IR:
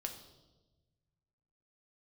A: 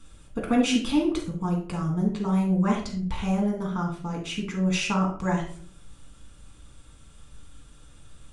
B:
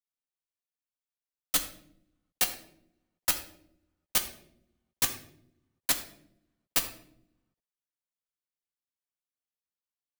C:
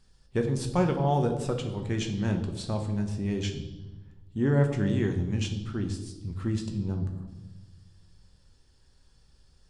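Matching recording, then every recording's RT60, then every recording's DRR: C; 0.50, 0.70, 1.2 s; -2.0, 3.5, 3.5 dB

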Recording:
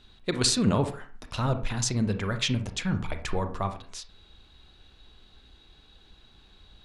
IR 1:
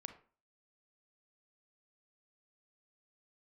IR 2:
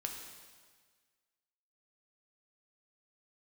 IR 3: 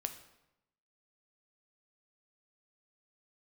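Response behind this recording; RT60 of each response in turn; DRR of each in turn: 1; 0.40, 1.6, 0.90 s; 7.5, 1.5, 7.0 dB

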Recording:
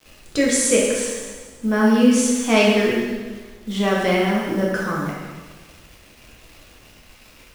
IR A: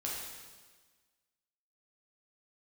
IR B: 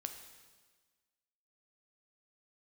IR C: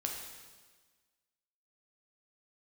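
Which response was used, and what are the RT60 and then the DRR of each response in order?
A; 1.4, 1.4, 1.4 s; -4.5, 6.0, 0.5 dB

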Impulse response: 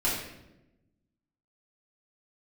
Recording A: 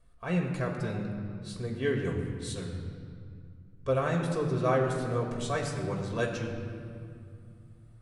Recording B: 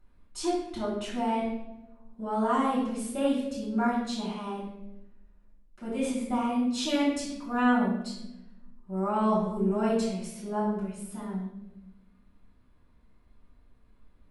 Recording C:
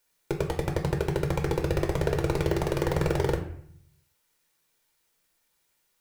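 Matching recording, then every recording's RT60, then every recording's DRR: B; 2.3, 0.95, 0.60 s; -0.5, -8.5, 2.0 dB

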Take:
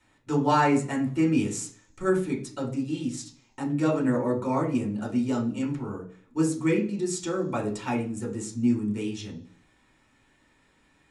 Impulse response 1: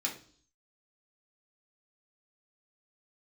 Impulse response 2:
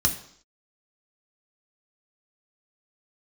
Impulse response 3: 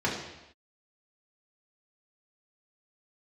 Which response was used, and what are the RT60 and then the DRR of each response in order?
1; 0.50 s, 0.65 s, not exponential; -2.0, 2.0, -5.0 dB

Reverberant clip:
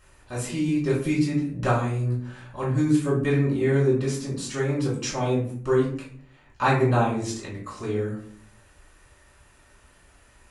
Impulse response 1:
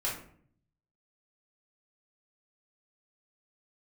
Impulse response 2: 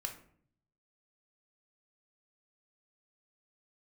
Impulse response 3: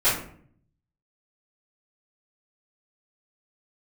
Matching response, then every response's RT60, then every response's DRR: 1; 0.55, 0.55, 0.55 s; -7.0, 2.5, -16.0 dB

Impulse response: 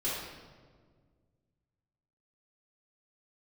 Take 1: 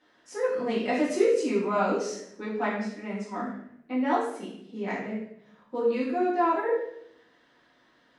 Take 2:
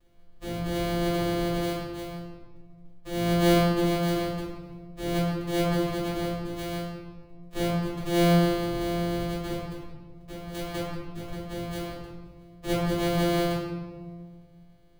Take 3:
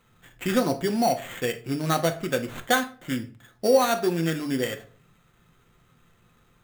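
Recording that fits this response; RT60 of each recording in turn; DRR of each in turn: 2; 0.75, 1.7, 0.45 s; -9.5, -10.5, 5.5 dB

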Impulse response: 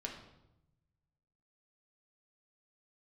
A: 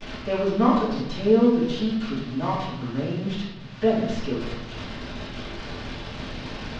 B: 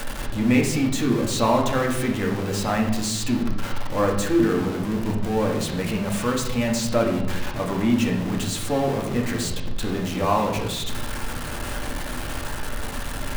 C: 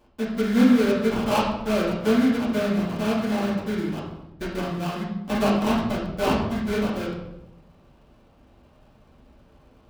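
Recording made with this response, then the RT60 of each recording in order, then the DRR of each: B; 0.85, 0.90, 0.85 s; -13.5, 0.0, -8.0 dB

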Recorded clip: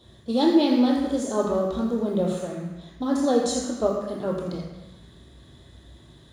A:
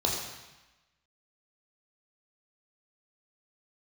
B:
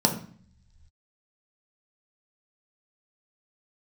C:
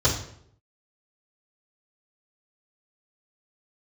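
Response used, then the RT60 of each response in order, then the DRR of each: A; 1.0, 0.50, 0.70 s; -2.0, 1.5, -8.0 dB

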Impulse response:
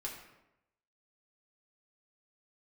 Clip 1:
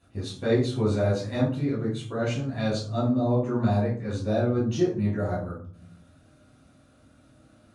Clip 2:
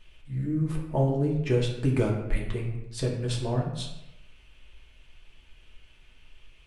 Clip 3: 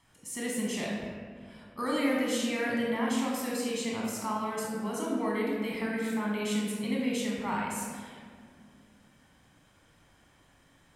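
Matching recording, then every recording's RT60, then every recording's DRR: 2; 0.50, 0.90, 2.0 s; -8.5, -2.5, -4.0 dB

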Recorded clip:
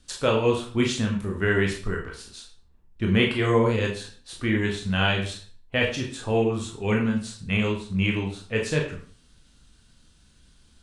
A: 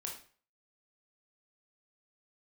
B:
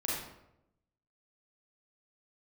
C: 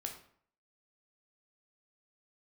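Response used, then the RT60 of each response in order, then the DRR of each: A; 0.45, 0.85, 0.60 s; -0.5, -6.0, 2.5 dB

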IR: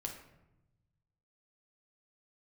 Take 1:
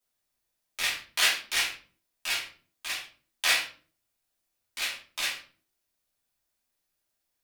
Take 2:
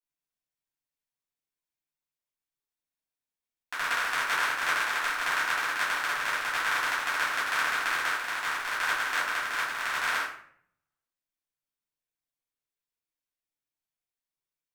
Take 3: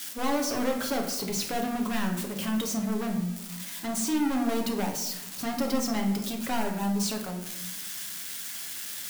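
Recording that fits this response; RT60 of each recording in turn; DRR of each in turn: 3; 0.40, 0.60, 0.95 s; -7.0, -10.0, 1.5 dB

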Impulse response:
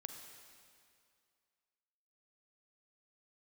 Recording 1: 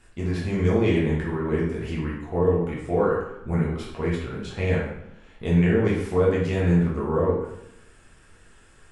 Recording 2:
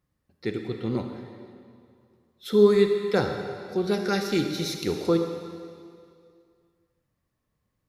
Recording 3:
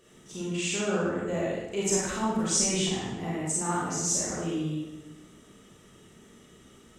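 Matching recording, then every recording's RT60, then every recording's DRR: 2; 0.80, 2.3, 1.1 s; -6.0, 4.5, -6.5 dB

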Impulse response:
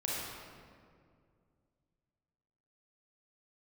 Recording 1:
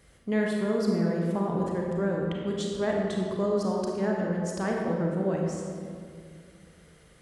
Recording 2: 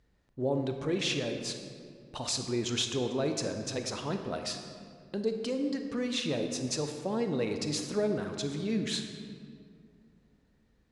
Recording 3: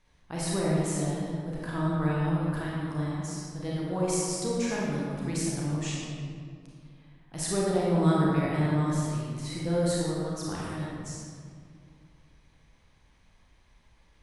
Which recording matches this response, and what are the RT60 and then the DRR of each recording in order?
3; 2.2, 2.2, 2.2 s; -1.5, 5.5, -6.0 dB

